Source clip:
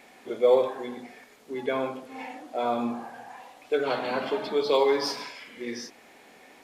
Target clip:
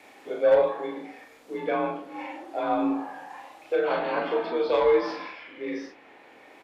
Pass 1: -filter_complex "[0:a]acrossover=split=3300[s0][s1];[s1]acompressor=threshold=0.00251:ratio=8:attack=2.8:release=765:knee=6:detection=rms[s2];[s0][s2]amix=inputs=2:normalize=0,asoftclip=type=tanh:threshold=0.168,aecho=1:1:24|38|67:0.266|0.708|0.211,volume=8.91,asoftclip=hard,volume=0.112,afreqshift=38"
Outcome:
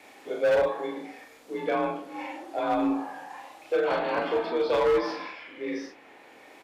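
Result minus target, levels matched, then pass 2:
overload inside the chain: distortion +23 dB; compression: peak gain reduction -6.5 dB
-filter_complex "[0:a]acrossover=split=3300[s0][s1];[s1]acompressor=threshold=0.00106:ratio=8:attack=2.8:release=765:knee=6:detection=rms[s2];[s0][s2]amix=inputs=2:normalize=0,asoftclip=type=tanh:threshold=0.168,aecho=1:1:24|38|67:0.266|0.708|0.211,volume=3.98,asoftclip=hard,volume=0.251,afreqshift=38"

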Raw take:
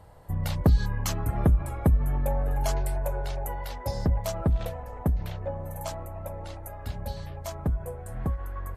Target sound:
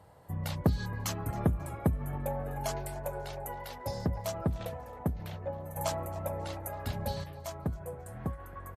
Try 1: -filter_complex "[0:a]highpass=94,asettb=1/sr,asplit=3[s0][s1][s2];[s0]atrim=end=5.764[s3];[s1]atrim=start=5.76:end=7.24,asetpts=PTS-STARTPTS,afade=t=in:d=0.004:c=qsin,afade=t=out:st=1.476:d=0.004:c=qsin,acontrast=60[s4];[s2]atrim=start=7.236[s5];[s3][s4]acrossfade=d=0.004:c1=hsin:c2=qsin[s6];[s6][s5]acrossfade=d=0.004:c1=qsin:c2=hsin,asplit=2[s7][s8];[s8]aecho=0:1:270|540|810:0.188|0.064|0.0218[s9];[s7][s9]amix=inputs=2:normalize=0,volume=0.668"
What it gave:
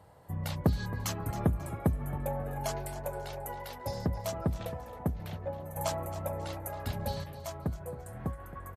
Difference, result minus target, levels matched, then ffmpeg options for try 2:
echo-to-direct +7.5 dB
-filter_complex "[0:a]highpass=94,asettb=1/sr,asplit=3[s0][s1][s2];[s0]atrim=end=5.764[s3];[s1]atrim=start=5.76:end=7.24,asetpts=PTS-STARTPTS,afade=t=in:d=0.004:c=qsin,afade=t=out:st=1.476:d=0.004:c=qsin,acontrast=60[s4];[s2]atrim=start=7.236[s5];[s3][s4]acrossfade=d=0.004:c1=hsin:c2=qsin[s6];[s6][s5]acrossfade=d=0.004:c1=qsin:c2=hsin,asplit=2[s7][s8];[s8]aecho=0:1:270|540:0.0794|0.027[s9];[s7][s9]amix=inputs=2:normalize=0,volume=0.668"

